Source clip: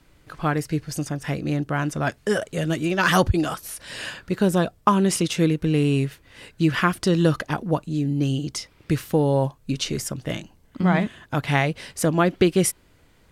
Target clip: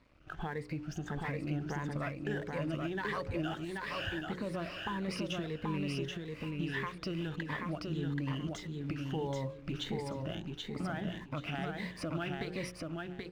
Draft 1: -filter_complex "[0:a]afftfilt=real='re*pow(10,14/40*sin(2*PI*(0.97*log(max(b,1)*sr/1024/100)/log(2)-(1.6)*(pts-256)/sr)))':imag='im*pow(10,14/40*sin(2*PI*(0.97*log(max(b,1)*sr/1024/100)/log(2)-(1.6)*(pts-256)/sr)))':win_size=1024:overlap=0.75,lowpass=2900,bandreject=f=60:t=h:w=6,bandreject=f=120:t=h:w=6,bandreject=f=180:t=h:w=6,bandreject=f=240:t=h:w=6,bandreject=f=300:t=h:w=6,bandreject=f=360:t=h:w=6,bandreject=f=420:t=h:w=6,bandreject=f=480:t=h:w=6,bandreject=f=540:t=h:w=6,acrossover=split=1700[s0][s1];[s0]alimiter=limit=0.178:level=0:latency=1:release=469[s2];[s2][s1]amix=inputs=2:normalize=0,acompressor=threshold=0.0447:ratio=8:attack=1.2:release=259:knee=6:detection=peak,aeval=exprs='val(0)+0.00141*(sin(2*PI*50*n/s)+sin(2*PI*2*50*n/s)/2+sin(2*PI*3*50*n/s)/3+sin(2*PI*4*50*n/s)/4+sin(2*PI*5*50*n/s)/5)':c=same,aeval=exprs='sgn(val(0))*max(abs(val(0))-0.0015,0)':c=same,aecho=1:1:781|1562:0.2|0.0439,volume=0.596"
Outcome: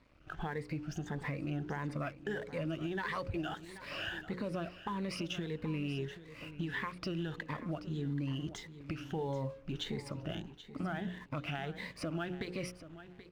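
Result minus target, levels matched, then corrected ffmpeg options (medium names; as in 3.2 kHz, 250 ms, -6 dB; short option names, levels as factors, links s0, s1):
echo-to-direct -11 dB
-filter_complex "[0:a]afftfilt=real='re*pow(10,14/40*sin(2*PI*(0.97*log(max(b,1)*sr/1024/100)/log(2)-(1.6)*(pts-256)/sr)))':imag='im*pow(10,14/40*sin(2*PI*(0.97*log(max(b,1)*sr/1024/100)/log(2)-(1.6)*(pts-256)/sr)))':win_size=1024:overlap=0.75,lowpass=2900,bandreject=f=60:t=h:w=6,bandreject=f=120:t=h:w=6,bandreject=f=180:t=h:w=6,bandreject=f=240:t=h:w=6,bandreject=f=300:t=h:w=6,bandreject=f=360:t=h:w=6,bandreject=f=420:t=h:w=6,bandreject=f=480:t=h:w=6,bandreject=f=540:t=h:w=6,acrossover=split=1700[s0][s1];[s0]alimiter=limit=0.178:level=0:latency=1:release=469[s2];[s2][s1]amix=inputs=2:normalize=0,acompressor=threshold=0.0447:ratio=8:attack=1.2:release=259:knee=6:detection=peak,aeval=exprs='val(0)+0.00141*(sin(2*PI*50*n/s)+sin(2*PI*2*50*n/s)/2+sin(2*PI*3*50*n/s)/3+sin(2*PI*4*50*n/s)/4+sin(2*PI*5*50*n/s)/5)':c=same,aeval=exprs='sgn(val(0))*max(abs(val(0))-0.0015,0)':c=same,aecho=1:1:781|1562|2343:0.708|0.156|0.0343,volume=0.596"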